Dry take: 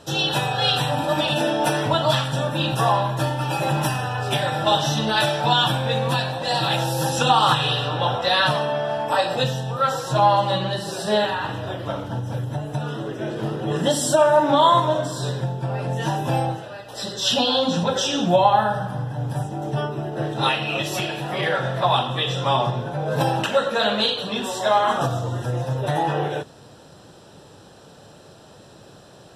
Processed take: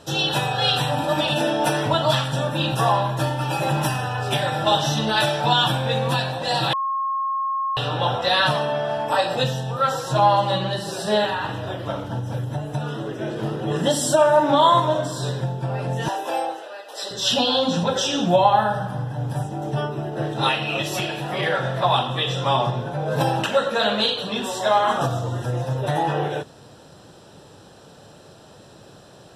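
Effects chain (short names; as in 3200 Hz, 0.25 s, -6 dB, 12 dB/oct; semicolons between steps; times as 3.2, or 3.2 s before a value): 6.73–7.77 bleep 1080 Hz -21 dBFS; 16.08–17.11 HPF 370 Hz 24 dB/oct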